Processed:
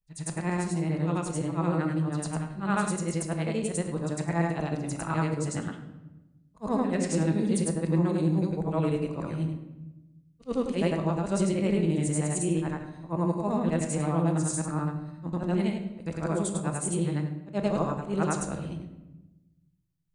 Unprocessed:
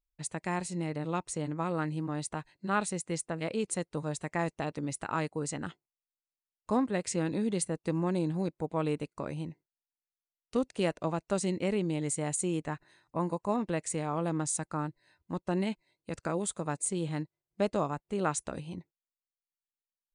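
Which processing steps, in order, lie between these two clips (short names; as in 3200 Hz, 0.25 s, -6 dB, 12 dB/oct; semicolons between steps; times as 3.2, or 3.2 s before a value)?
short-time reversal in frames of 0.214 s; low shelf 160 Hz +9 dB; reverb RT60 1.0 s, pre-delay 6 ms, DRR 5.5 dB; gain +3.5 dB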